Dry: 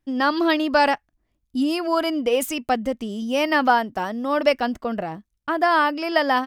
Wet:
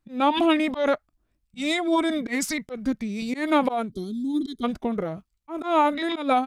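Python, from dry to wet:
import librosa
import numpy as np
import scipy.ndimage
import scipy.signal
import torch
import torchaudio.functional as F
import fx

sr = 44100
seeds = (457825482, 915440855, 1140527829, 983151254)

y = fx.auto_swell(x, sr, attack_ms=163.0)
y = fx.formant_shift(y, sr, semitones=-5)
y = fx.spec_box(y, sr, start_s=3.92, length_s=0.72, low_hz=430.0, high_hz=3100.0, gain_db=-27)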